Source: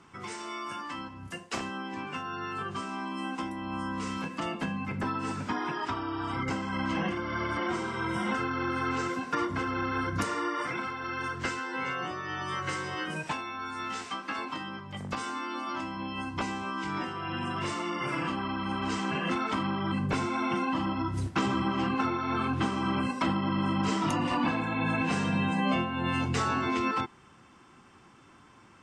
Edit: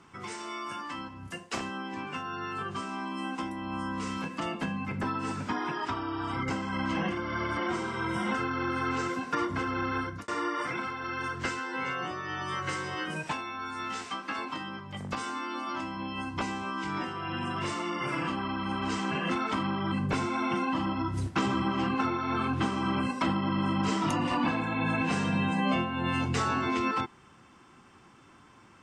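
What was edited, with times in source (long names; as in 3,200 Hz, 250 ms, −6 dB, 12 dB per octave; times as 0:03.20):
0:09.96–0:10.28: fade out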